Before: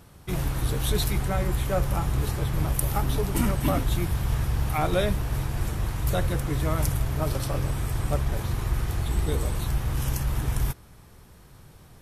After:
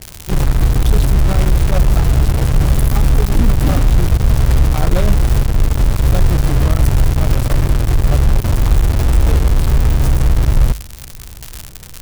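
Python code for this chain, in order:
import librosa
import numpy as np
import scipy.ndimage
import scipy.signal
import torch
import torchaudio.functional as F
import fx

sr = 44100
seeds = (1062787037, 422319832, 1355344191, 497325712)

p1 = fx.tilt_eq(x, sr, slope=-4.0)
p2 = p1 + fx.echo_single(p1, sr, ms=932, db=-23.0, dry=0)
p3 = fx.dmg_crackle(p2, sr, seeds[0], per_s=150.0, level_db=-21.0)
p4 = fx.high_shelf(p3, sr, hz=4400.0, db=9.0)
p5 = fx.hum_notches(p4, sr, base_hz=50, count=3)
p6 = fx.quant_companded(p5, sr, bits=2)
p7 = p5 + (p6 * librosa.db_to_amplitude(-7.0))
y = p7 * librosa.db_to_amplitude(-6.5)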